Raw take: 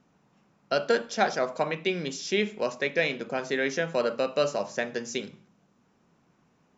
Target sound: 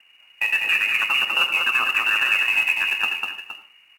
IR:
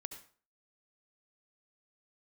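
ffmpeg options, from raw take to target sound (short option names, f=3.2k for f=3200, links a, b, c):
-filter_complex "[0:a]lowpass=f=3.3k:t=q:w=0.5098,lowpass=f=3.3k:t=q:w=0.6013,lowpass=f=3.3k:t=q:w=0.9,lowpass=f=3.3k:t=q:w=2.563,afreqshift=-3900,atempo=1.7,highpass=f=240:w=0.5412,highpass=f=240:w=1.3066,highshelf=f=2.3k:g=6.5,acrusher=bits=4:mode=log:mix=0:aa=0.000001,alimiter=limit=-18.5dB:level=0:latency=1:release=62,asetrate=34006,aresample=44100,atempo=1.29684,aecho=1:1:198|467:0.631|0.251,asplit=2[a][b];[1:a]atrim=start_sample=2205,highshelf=f=3.8k:g=-9.5[c];[b][c]afir=irnorm=-1:irlink=0,volume=9dB[d];[a][d]amix=inputs=2:normalize=0,acontrast=30,volume=-5dB"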